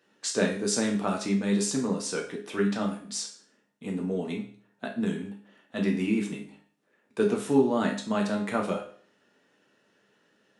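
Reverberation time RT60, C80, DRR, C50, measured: 0.50 s, 12.5 dB, -0.5 dB, 8.0 dB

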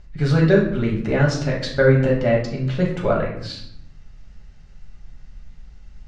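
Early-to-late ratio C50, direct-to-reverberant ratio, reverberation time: 5.0 dB, -2.5 dB, 0.75 s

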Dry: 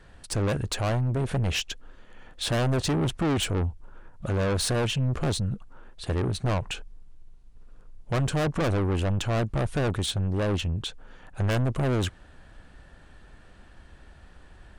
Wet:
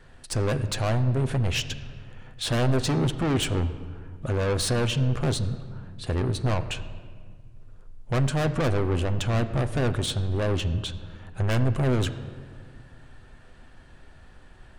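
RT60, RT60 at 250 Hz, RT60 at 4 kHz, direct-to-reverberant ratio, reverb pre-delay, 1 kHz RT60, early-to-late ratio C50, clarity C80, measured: 1.8 s, 2.4 s, 1.1 s, 8.0 dB, 8 ms, 1.6 s, 13.0 dB, 14.0 dB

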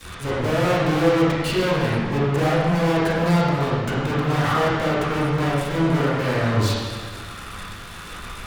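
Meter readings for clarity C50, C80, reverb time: -2.5 dB, 0.0 dB, 1.6 s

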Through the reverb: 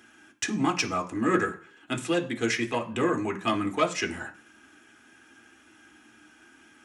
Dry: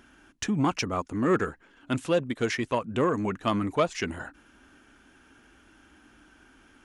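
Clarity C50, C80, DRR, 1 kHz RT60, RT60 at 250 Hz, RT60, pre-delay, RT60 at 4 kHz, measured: 15.0 dB, 19.5 dB, 3.5 dB, 0.50 s, 0.40 s, 0.50 s, 3 ms, 0.50 s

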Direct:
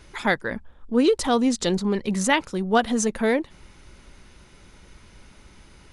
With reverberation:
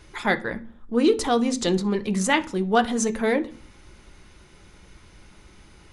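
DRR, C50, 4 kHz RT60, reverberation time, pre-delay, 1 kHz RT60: 7.5 dB, 18.0 dB, 0.45 s, 0.45 s, 3 ms, 0.40 s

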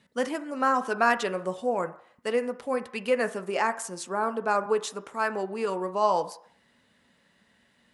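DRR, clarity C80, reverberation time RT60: 9.0 dB, 19.0 dB, 0.60 s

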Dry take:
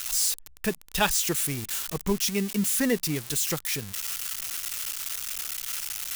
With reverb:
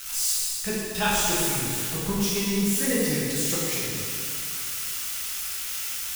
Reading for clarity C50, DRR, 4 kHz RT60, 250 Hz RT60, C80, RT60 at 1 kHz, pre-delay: -3.5 dB, -9.0 dB, 2.3 s, 2.6 s, -1.5 dB, 2.5 s, 4 ms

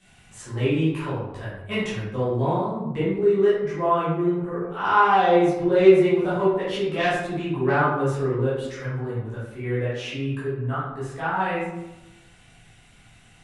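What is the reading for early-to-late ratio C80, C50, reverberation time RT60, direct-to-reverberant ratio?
4.0 dB, 0.0 dB, 1.0 s, -11.0 dB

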